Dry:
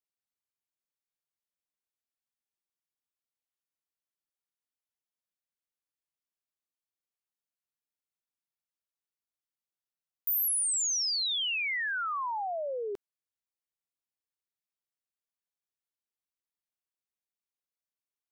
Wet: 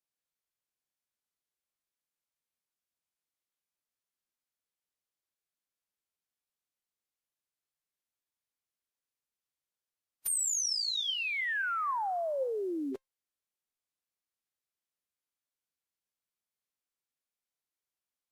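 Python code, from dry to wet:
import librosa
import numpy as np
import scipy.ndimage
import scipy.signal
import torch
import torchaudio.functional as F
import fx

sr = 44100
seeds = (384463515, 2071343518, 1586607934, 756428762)

y = fx.comb_fb(x, sr, f0_hz=810.0, decay_s=0.18, harmonics='all', damping=0.0, mix_pct=50)
y = fx.pitch_keep_formants(y, sr, semitones=-7.5)
y = fx.record_warp(y, sr, rpm=33.33, depth_cents=100.0)
y = y * librosa.db_to_amplitude(6.0)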